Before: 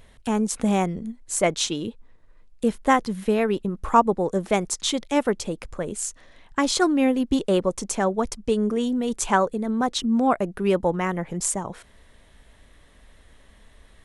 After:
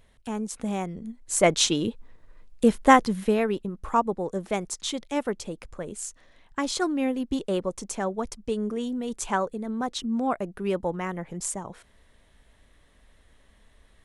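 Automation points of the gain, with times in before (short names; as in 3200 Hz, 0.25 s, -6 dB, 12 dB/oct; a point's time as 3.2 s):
0.85 s -8 dB
1.54 s +3 dB
2.97 s +3 dB
3.72 s -6 dB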